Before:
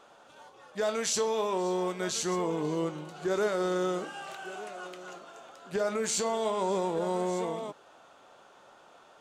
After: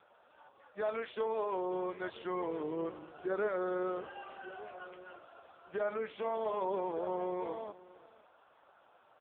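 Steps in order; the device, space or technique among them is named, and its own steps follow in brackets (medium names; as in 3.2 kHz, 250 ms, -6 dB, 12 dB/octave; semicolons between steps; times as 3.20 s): satellite phone (band-pass 320–3200 Hz; delay 536 ms -19.5 dB; trim -3.5 dB; AMR-NB 5.15 kbps 8 kHz)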